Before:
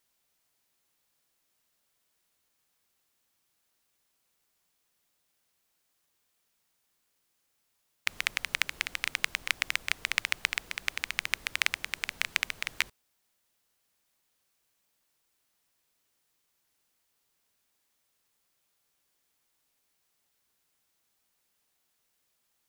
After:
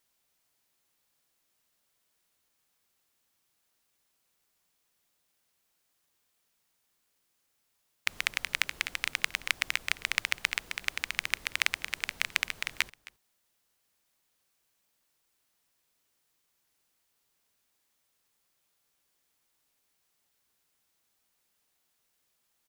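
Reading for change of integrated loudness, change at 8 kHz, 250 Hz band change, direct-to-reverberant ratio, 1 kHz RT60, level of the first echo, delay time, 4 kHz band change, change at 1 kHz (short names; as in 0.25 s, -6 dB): 0.0 dB, 0.0 dB, 0.0 dB, none, none, -20.5 dB, 0.265 s, 0.0 dB, 0.0 dB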